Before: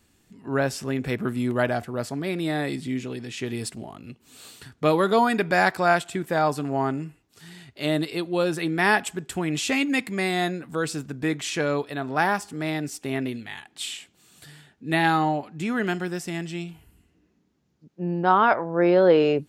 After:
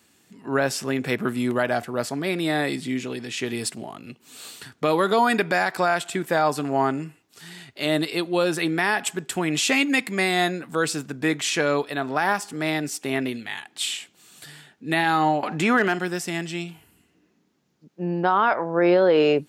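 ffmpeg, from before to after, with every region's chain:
-filter_complex "[0:a]asettb=1/sr,asplit=3[a][b][c];[a]atrim=end=15.434[d];[b]atrim=start=15.43:end=15.99,asetpts=PTS-STARTPTS,afade=t=in:d=0.004:c=qsin,afade=t=out:st=0.556:d=0.004:c=qsin,equalizer=f=910:w=0.34:g=9,acompressor=mode=upward:threshold=-21dB:ratio=2.5:attack=3.2:release=140:knee=2.83:detection=peak,asoftclip=type=hard:threshold=-10.5dB[e];[c]atrim=start=15.986[f];[d][e]acrossfade=d=0.004:c1=hsin:c2=qsin[g];[g][f]acrossfade=d=0.004:c1=qsin:c2=hsin,highpass=130,lowshelf=f=470:g=-5,alimiter=limit=-15dB:level=0:latency=1:release=109,volume=5.5dB"

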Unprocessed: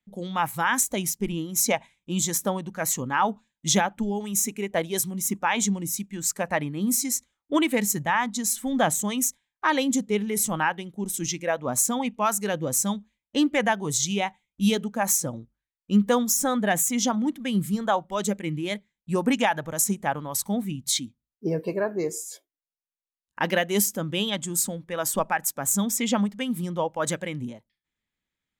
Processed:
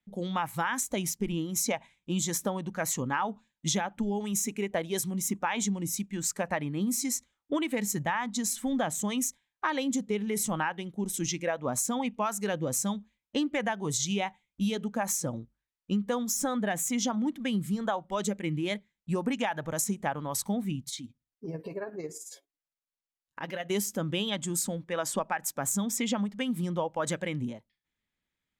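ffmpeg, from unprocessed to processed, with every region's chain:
-filter_complex "[0:a]asettb=1/sr,asplit=3[a][b][c];[a]atrim=end=20.834[d];[b]atrim=start=20.83:end=23.7,asetpts=PTS-STARTPTS,afade=t=in:d=0.004:c=qsin,afade=t=out:st=2.866:d=0.004:c=qsin,aecho=1:1:7.2:0.39,atrim=end_sample=126567,acompressor=threshold=-37dB:ratio=2:attack=3.2:release=140:knee=1:detection=peak,tremolo=f=18:d=0.54[e];[c]atrim=start=23.696[f];[d][e]acrossfade=d=0.004:c1=hsin:c2=qsin[g];[g][f]acrossfade=d=0.004:c1=qsin:c2=hsin,asettb=1/sr,asplit=3[h][i][j];[h]atrim=end=24.834[k];[i]atrim=start=24.83:end=25.41,asetpts=PTS-STARTPTS,afade=t=in:d=0.004:c=qsin,afade=t=out:st=0.576:d=0.004:c=qsin,lowpass=9.7k,lowshelf=f=75:g=-12[l];[j]atrim=start=25.406[m];[k][l]acrossfade=d=0.004:c1=hsin:c2=qsin[n];[n][m]acrossfade=d=0.004:c1=qsin:c2=hsin,highshelf=f=9.7k:g=-9,acompressor=threshold=-26dB:ratio=6"

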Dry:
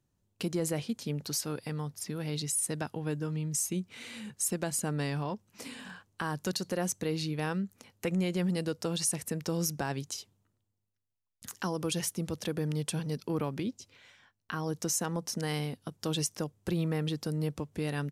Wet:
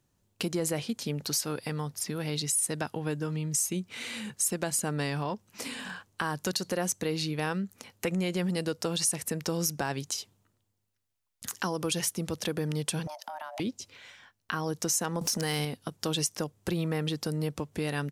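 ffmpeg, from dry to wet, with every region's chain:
-filter_complex "[0:a]asettb=1/sr,asplit=3[a][b][c];[a]atrim=end=13.074[d];[b]atrim=start=13.07:end=13.6,asetpts=PTS-STARTPTS,afade=t=in:d=0.004:c=qsin,afade=t=out:st=0.526:d=0.004:c=qsin,afreqshift=450,acompressor=threshold=-39dB:ratio=10:attack=3.2:release=140:knee=1:detection=peak,lowshelf=f=350:t=q:w=3:g=11[e];[c]atrim=start=13.596[f];[d][e]acrossfade=d=0.004:c1=hsin:c2=qsin[g];[g][f]acrossfade=d=0.004:c1=qsin:c2=hsin,asettb=1/sr,asplit=3[h][i][j];[h]atrim=end=15.214[k];[i]atrim=start=15.21:end=15.65,asetpts=PTS-STARTPTS,afade=t=in:d=0.004:c=qsin,afade=t=out:st=0.436:d=0.004:c=qsin,highshelf=f=3.9k:g=5.5,acompressor=threshold=-50dB:ratio=5:attack=3.2:release=140:knee=1:detection=peak,aeval=exprs='0.0562*sin(PI/2*6.31*val(0)/0.0562)':c=same[l];[j]atrim=start=15.646[m];[k][l]acrossfade=d=0.004:c1=hsin:c2=qsin[n];[n][m]acrossfade=d=0.004:c1=qsin:c2=hsin,lowshelf=f=370:g=-5,acompressor=threshold=-40dB:ratio=1.5,volume=7.5dB"

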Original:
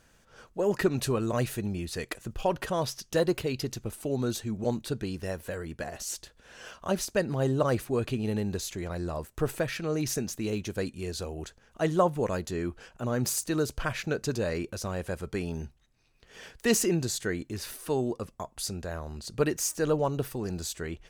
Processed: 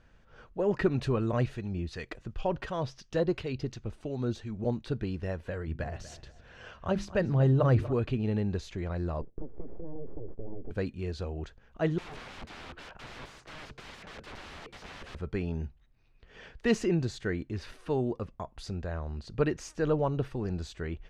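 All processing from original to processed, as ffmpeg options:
-filter_complex "[0:a]asettb=1/sr,asplit=3[a][b][c];[a]atrim=end=1.464[d];[b]atrim=start=1.46:end=4.86,asetpts=PTS-STARTPTS,afade=t=in:d=0.004:c=qsin,afade=t=out:st=3.396:d=0.004:c=qsin,equalizer=f=5.7k:t=o:w=1.4:g=3.5,acrossover=split=830[e][f];[e]aeval=exprs='val(0)*(1-0.5/2+0.5/2*cos(2*PI*2.8*n/s))':c=same[g];[f]aeval=exprs='val(0)*(1-0.5/2-0.5/2*cos(2*PI*2.8*n/s))':c=same[h];[g][h]amix=inputs=2:normalize=0[i];[c]atrim=start=4.856[j];[d][i]acrossfade=d=0.004:c1=hsin:c2=qsin[k];[k][j]acrossfade=d=0.004:c1=qsin:c2=hsin,asettb=1/sr,asplit=3[l][m][n];[l]atrim=end=5.674[o];[m]atrim=start=5.67:end=7.93,asetpts=PTS-STARTPTS,afade=t=in:d=0.004:c=qsin,afade=t=out:st=2.256:d=0.004:c=qsin,equalizer=f=97:w=1.3:g=9.5,bandreject=f=50:t=h:w=6,bandreject=f=100:t=h:w=6,bandreject=f=150:t=h:w=6,bandreject=f=200:t=h:w=6,bandreject=f=250:t=h:w=6,bandreject=f=300:t=h:w=6,bandreject=f=350:t=h:w=6,asplit=2[p][q];[q]adelay=240,lowpass=f=3.6k:p=1,volume=-15dB,asplit=2[r][s];[s]adelay=240,lowpass=f=3.6k:p=1,volume=0.34,asplit=2[t][u];[u]adelay=240,lowpass=f=3.6k:p=1,volume=0.34[v];[p][r][t][v]amix=inputs=4:normalize=0,atrim=end_sample=99666[w];[n]atrim=start=7.926[x];[o][w]acrossfade=d=0.004:c1=hsin:c2=qsin[y];[y][x]acrossfade=d=0.004:c1=qsin:c2=hsin,asettb=1/sr,asplit=3[z][aa][ab];[z]atrim=end=9.214[ac];[aa]atrim=start=9.21:end=10.71,asetpts=PTS-STARTPTS,afade=t=in:d=0.004:c=qsin,afade=t=out:st=1.496:d=0.004:c=qsin,acompressor=threshold=-36dB:ratio=5:attack=3.2:release=140:knee=1:detection=peak,aeval=exprs='abs(val(0))':c=same,lowpass=f=430:t=q:w=2.2[ad];[ab]atrim=start=10.706[ae];[ac][ad]acrossfade=d=0.004:c1=hsin:c2=qsin[af];[af][ae]acrossfade=d=0.004:c1=qsin:c2=hsin,asettb=1/sr,asplit=3[ag][ah][ai];[ag]atrim=end=11.984[aj];[ah]atrim=start=11.98:end=15.15,asetpts=PTS-STARTPTS,afade=t=in:d=0.004:c=qsin,afade=t=out:st=3.166:d=0.004:c=qsin,acrossover=split=86|260|1900[ak][al][am][an];[ak]acompressor=threshold=-52dB:ratio=3[ao];[al]acompressor=threshold=-35dB:ratio=3[ap];[am]acompressor=threshold=-42dB:ratio=3[aq];[an]acompressor=threshold=-50dB:ratio=3[ar];[ao][ap][aq][ar]amix=inputs=4:normalize=0,asplit=2[as][at];[at]highpass=f=720:p=1,volume=23dB,asoftclip=type=tanh:threshold=-21dB[au];[as][au]amix=inputs=2:normalize=0,lowpass=f=2k:p=1,volume=-6dB,aeval=exprs='(mod(66.8*val(0)+1,2)-1)/66.8':c=same[av];[ai]atrim=start=15.146[aw];[aj][av]acrossfade=d=0.004:c1=hsin:c2=qsin[ax];[ax][aw]acrossfade=d=0.004:c1=qsin:c2=hsin,lowpass=3.2k,lowshelf=f=100:g=9.5,volume=-2dB"

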